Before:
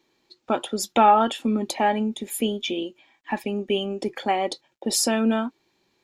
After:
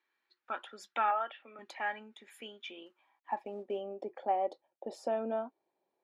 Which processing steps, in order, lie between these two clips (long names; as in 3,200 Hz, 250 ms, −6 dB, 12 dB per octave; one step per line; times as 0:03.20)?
0:01.11–0:01.59: loudspeaker in its box 410–3,000 Hz, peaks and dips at 620 Hz +7 dB, 1,000 Hz −6 dB, 1,600 Hz −6 dB
0:02.86–0:03.81: log-companded quantiser 6 bits
band-pass filter sweep 1,600 Hz → 640 Hz, 0:02.60–0:03.59
level −4.5 dB